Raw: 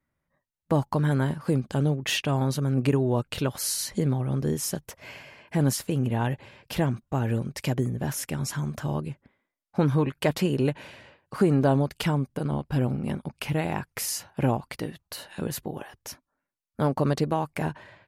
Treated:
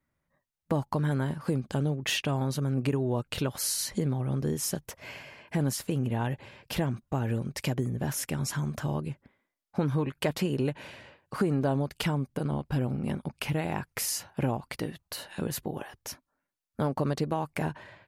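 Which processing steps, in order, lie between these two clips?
compressor 2:1, threshold -27 dBFS, peak gain reduction 6.5 dB

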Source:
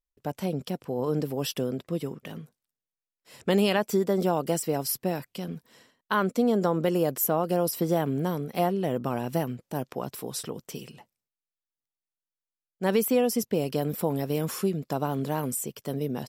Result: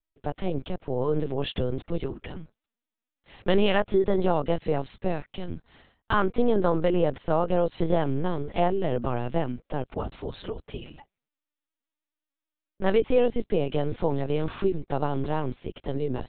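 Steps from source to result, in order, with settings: LPC vocoder at 8 kHz pitch kept; gain +2.5 dB

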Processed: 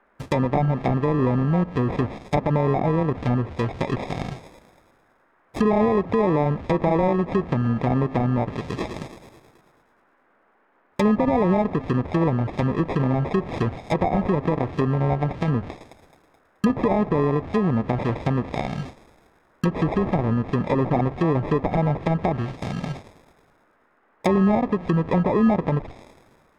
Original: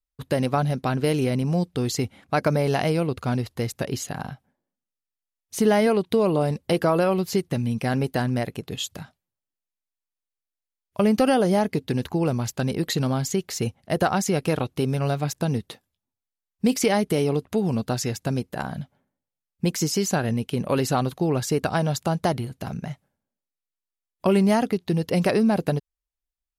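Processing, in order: delta modulation 64 kbps, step -32.5 dBFS; gate -35 dBFS, range -39 dB; thin delay 0.107 s, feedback 65%, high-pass 2500 Hz, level -7 dB; sample-and-hold 30×; limiter -14 dBFS, peak gain reduction 5.5 dB; treble ducked by the level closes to 1200 Hz, closed at -20 dBFS; band noise 210–1700 Hz -66 dBFS; gain +3 dB

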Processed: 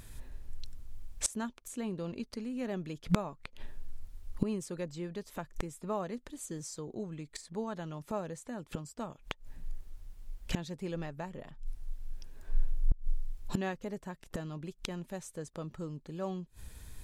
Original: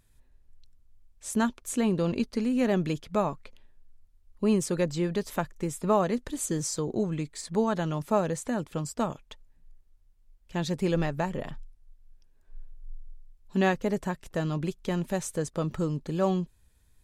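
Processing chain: flipped gate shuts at -31 dBFS, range -27 dB; gain +15.5 dB

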